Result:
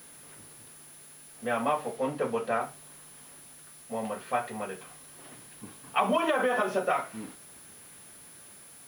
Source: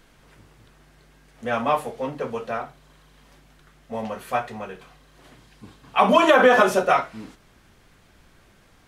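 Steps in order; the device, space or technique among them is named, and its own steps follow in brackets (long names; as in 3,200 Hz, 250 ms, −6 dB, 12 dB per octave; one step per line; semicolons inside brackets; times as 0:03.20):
medium wave at night (band-pass filter 130–3,800 Hz; downward compressor, threshold −20 dBFS, peak gain reduction 9.5 dB; amplitude tremolo 0.38 Hz, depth 34%; steady tone 10,000 Hz −50 dBFS; white noise bed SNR 23 dB)
0:01.97–0:02.61: high-shelf EQ 11,000 Hz −8 dB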